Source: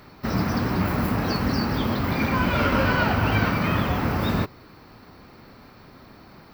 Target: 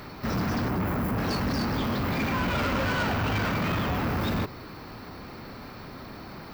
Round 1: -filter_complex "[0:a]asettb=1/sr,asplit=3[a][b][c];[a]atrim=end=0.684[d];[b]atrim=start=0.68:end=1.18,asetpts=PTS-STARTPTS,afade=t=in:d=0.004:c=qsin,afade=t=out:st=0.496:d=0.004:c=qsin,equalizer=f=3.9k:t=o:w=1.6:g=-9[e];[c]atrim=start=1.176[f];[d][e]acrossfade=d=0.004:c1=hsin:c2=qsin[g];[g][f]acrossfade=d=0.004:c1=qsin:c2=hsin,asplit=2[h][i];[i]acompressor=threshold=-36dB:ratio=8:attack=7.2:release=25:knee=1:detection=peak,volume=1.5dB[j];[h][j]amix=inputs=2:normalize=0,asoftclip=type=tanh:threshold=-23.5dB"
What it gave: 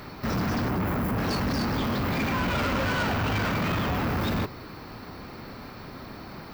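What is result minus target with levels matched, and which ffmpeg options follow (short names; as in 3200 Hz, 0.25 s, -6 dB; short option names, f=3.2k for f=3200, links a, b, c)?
compressor: peak gain reduction -10 dB
-filter_complex "[0:a]asettb=1/sr,asplit=3[a][b][c];[a]atrim=end=0.684[d];[b]atrim=start=0.68:end=1.18,asetpts=PTS-STARTPTS,afade=t=in:d=0.004:c=qsin,afade=t=out:st=0.496:d=0.004:c=qsin,equalizer=f=3.9k:t=o:w=1.6:g=-9[e];[c]atrim=start=1.176[f];[d][e]acrossfade=d=0.004:c1=hsin:c2=qsin[g];[g][f]acrossfade=d=0.004:c1=qsin:c2=hsin,asplit=2[h][i];[i]acompressor=threshold=-47.5dB:ratio=8:attack=7.2:release=25:knee=1:detection=peak,volume=1.5dB[j];[h][j]amix=inputs=2:normalize=0,asoftclip=type=tanh:threshold=-23.5dB"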